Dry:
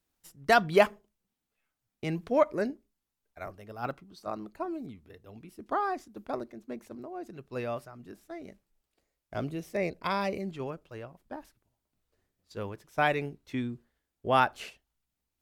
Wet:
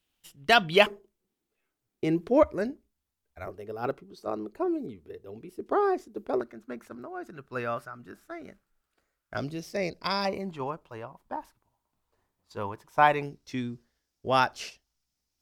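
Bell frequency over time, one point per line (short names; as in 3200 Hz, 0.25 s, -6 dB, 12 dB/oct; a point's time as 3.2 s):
bell +13 dB 0.66 oct
3000 Hz
from 0.86 s 370 Hz
from 2.43 s 73 Hz
from 3.47 s 410 Hz
from 6.41 s 1400 Hz
from 9.37 s 5000 Hz
from 10.25 s 960 Hz
from 13.23 s 5400 Hz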